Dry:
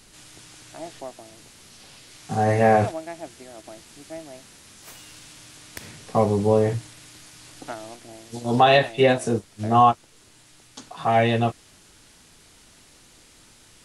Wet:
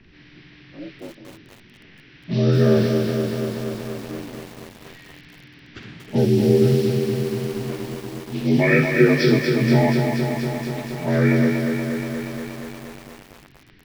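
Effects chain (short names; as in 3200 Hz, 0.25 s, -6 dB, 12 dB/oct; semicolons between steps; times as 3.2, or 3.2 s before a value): inharmonic rescaling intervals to 83%; band shelf 830 Hz -14 dB; in parallel at -1 dB: limiter -19.5 dBFS, peak gain reduction 10.5 dB; 5.78–7.64 on the sum: requantised 8-bit, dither triangular; low-pass opened by the level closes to 1400 Hz, open at -17.5 dBFS; on a send: thin delay 63 ms, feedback 45%, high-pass 2700 Hz, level -6 dB; on the sum: lo-fi delay 0.238 s, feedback 80%, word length 7-bit, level -5 dB; gain +2.5 dB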